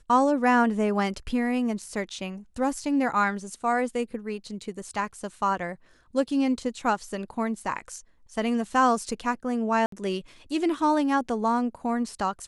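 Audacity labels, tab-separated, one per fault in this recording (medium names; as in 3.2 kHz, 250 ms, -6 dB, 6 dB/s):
9.860000	9.920000	dropout 63 ms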